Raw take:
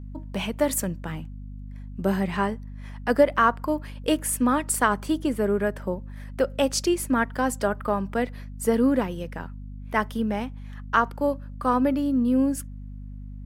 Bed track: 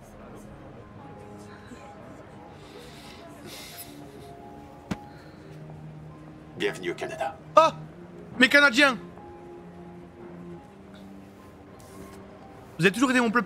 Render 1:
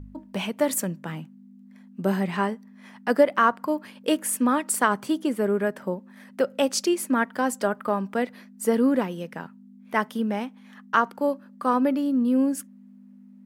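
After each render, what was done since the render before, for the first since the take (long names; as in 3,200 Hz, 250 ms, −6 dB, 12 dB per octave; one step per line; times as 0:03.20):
hum removal 50 Hz, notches 3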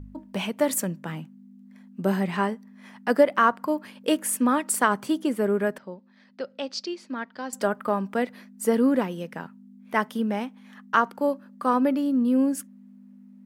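0:05.78–0:07.53: transistor ladder low-pass 5,200 Hz, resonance 55%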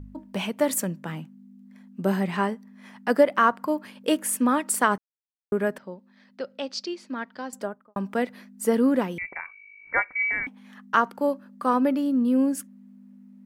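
0:04.98–0:05.52: silence
0:07.34–0:07.96: fade out and dull
0:09.18–0:10.47: voice inversion scrambler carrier 2,500 Hz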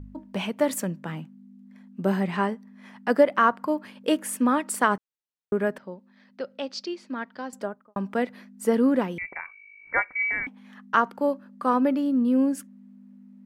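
high-shelf EQ 6,400 Hz −7.5 dB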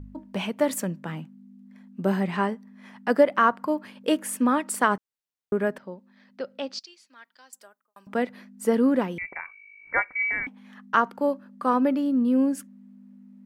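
0:06.79–0:08.07: first difference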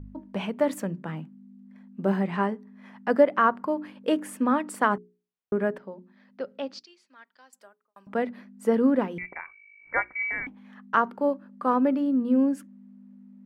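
high-shelf EQ 3,400 Hz −11.5 dB
mains-hum notches 60/120/180/240/300/360/420 Hz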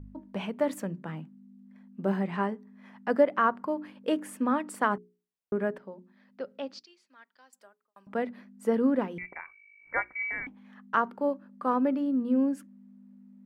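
level −3.5 dB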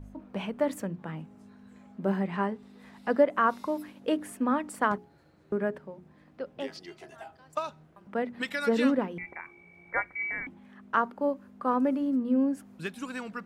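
mix in bed track −15.5 dB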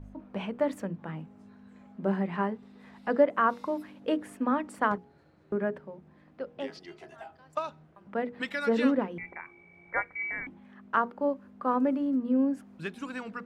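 high-shelf EQ 6,400 Hz −11.5 dB
mains-hum notches 60/120/180/240/300/360/420/480 Hz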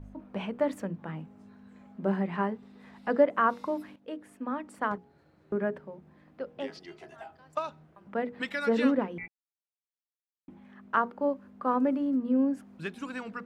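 0:03.96–0:05.59: fade in, from −13.5 dB
0:09.28–0:10.48: silence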